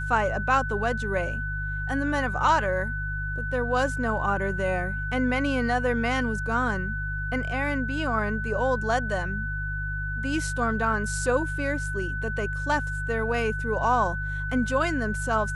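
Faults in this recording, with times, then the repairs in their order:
hum 50 Hz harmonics 3 -32 dBFS
tone 1500 Hz -31 dBFS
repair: de-hum 50 Hz, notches 3; notch 1500 Hz, Q 30

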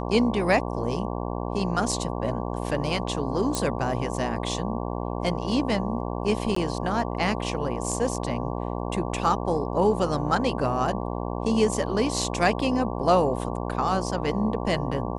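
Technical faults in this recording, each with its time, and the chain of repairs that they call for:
buzz 60 Hz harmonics 19 -30 dBFS
3.55 pop -12 dBFS
6.55–6.56 gap 14 ms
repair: de-click; de-hum 60 Hz, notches 19; interpolate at 6.55, 14 ms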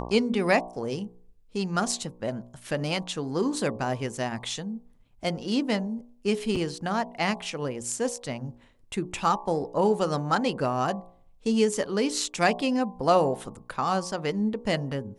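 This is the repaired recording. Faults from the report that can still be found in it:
none

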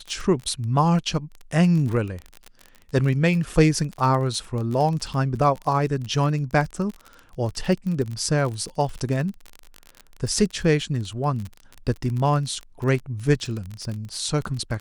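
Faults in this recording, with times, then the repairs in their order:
crackle 31/s -28 dBFS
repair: de-click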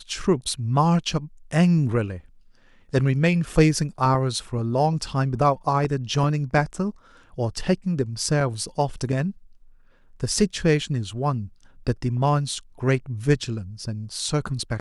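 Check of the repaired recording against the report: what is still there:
none

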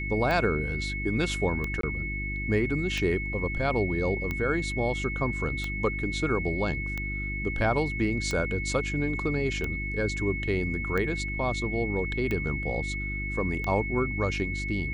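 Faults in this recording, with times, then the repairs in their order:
hum 50 Hz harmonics 7 -34 dBFS
tick 45 rpm -18 dBFS
tone 2200 Hz -33 dBFS
1.81–1.83 gap 23 ms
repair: de-click; de-hum 50 Hz, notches 7; notch 2200 Hz, Q 30; interpolate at 1.81, 23 ms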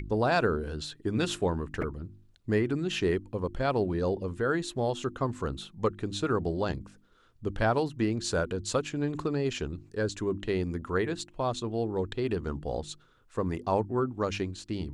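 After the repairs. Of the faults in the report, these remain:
none

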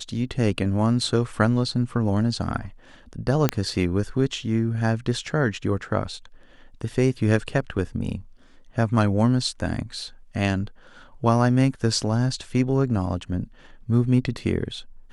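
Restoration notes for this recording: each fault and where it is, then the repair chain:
3.49 pop -5 dBFS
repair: de-click

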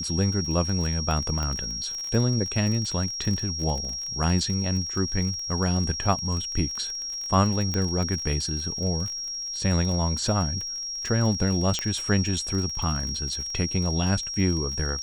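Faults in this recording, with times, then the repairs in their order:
crackle 31/s -30 dBFS
tone 5600 Hz -30 dBFS
1.43 pop -17 dBFS
7.74 pop -14 dBFS
11.79 pop -12 dBFS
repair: de-click; notch 5600 Hz, Q 30

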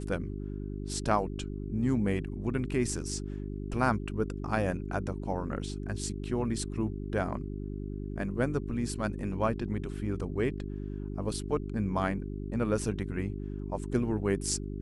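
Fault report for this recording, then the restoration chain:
hum 50 Hz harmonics 8 -37 dBFS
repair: de-hum 50 Hz, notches 8

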